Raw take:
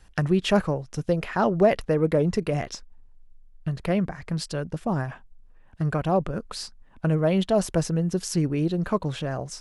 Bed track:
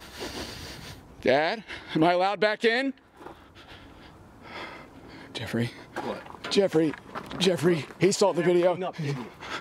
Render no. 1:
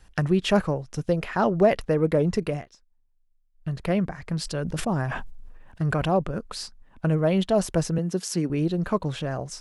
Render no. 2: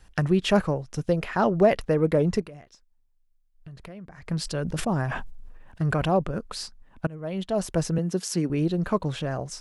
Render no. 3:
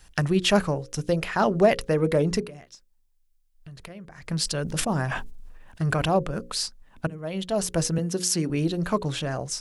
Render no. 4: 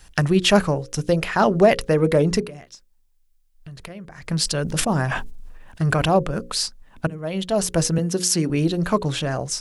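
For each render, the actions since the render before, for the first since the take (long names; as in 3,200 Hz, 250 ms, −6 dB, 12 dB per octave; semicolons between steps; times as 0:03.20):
0:02.47–0:03.73: duck −18 dB, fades 0.19 s; 0:04.40–0:06.13: level that may fall only so fast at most 31 dB per second; 0:07.98–0:08.50: high-pass filter 170 Hz 24 dB per octave
0:02.41–0:04.26: downward compressor 4 to 1, threshold −42 dBFS; 0:07.07–0:07.91: fade in, from −23.5 dB
high-shelf EQ 2,800 Hz +9 dB; mains-hum notches 60/120/180/240/300/360/420/480/540 Hz
level +4.5 dB; brickwall limiter −3 dBFS, peak gain reduction 1 dB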